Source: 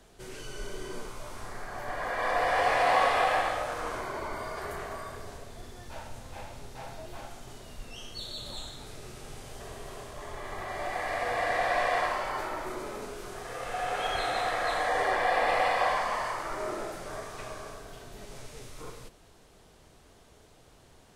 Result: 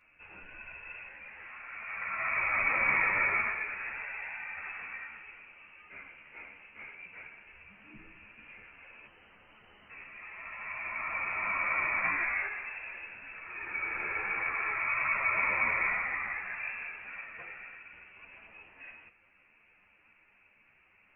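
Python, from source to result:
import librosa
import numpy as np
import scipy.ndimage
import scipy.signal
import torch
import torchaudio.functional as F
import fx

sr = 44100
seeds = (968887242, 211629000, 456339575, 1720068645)

y = scipy.signal.sosfilt(scipy.signal.butter(2, 380.0, 'highpass', fs=sr, output='sos'), x)
y = fx.overflow_wrap(y, sr, gain_db=45.0, at=(9.06, 9.9))
y = fx.room_flutter(y, sr, wall_m=3.1, rt60_s=0.41, at=(12.03, 12.46), fade=0.02)
y = fx.freq_invert(y, sr, carrier_hz=3000)
y = fx.ensemble(y, sr)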